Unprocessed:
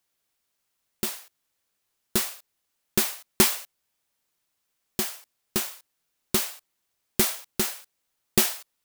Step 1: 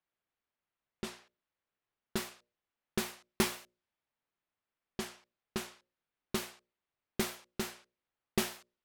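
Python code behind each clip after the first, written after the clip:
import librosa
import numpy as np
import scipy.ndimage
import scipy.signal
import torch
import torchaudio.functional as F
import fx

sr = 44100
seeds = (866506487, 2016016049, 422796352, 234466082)

y = fx.env_lowpass(x, sr, base_hz=3000.0, full_db=-22.5)
y = fx.high_shelf(y, sr, hz=4700.0, db=-10.5)
y = fx.hum_notches(y, sr, base_hz=60, count=10)
y = F.gain(torch.from_numpy(y), -6.5).numpy()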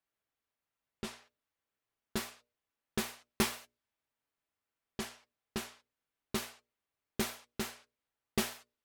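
y = fx.notch_comb(x, sr, f0_hz=180.0)
y = F.gain(torch.from_numpy(y), 1.0).numpy()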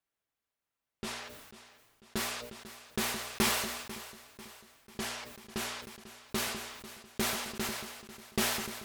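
y = fx.echo_feedback(x, sr, ms=494, feedback_pct=49, wet_db=-15.0)
y = fx.sustainer(y, sr, db_per_s=43.0)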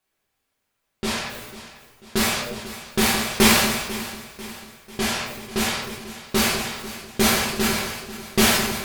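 y = fx.room_shoebox(x, sr, seeds[0], volume_m3=75.0, walls='mixed', distance_m=1.0)
y = F.gain(torch.from_numpy(y), 9.0).numpy()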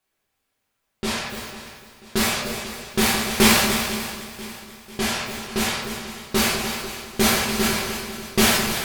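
y = fx.echo_feedback(x, sr, ms=294, feedback_pct=25, wet_db=-10.5)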